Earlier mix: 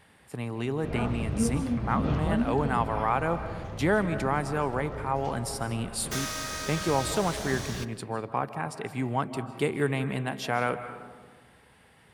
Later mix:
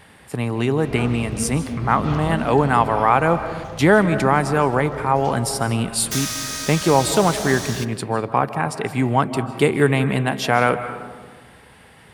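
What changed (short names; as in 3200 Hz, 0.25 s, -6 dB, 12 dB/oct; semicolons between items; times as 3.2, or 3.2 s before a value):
speech +10.5 dB; background: add high shelf 2300 Hz +11 dB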